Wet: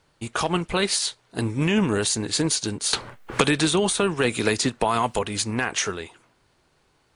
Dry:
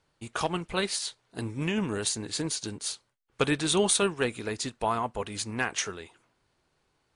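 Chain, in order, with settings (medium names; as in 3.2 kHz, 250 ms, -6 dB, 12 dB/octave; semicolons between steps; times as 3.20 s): loudness maximiser +19.5 dB; 2.93–5.19 s: three bands compressed up and down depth 100%; trim -11 dB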